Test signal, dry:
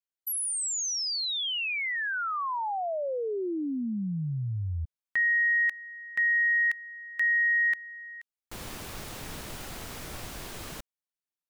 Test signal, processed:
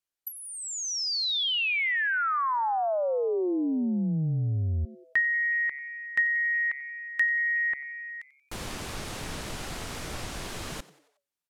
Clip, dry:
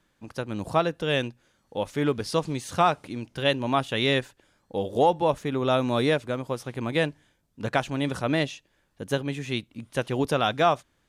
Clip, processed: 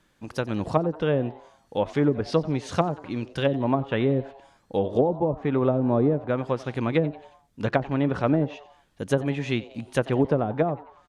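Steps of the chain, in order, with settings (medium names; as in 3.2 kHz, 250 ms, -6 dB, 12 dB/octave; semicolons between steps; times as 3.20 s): low-pass that closes with the level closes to 380 Hz, closed at -18.5 dBFS; frequency-shifting echo 91 ms, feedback 49%, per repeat +140 Hz, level -19.5 dB; trim +4 dB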